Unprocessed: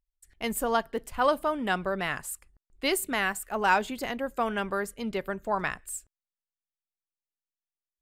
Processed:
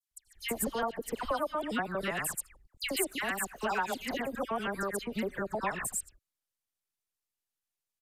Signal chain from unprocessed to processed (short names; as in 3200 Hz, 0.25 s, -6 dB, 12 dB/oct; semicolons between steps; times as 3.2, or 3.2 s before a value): local time reversal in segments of 80 ms; high shelf 5100 Hz +5 dB; compressor 3:1, threshold -34 dBFS, peak gain reduction 12.5 dB; dispersion lows, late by 0.113 s, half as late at 2100 Hz; downsampling 32000 Hz; gain +2.5 dB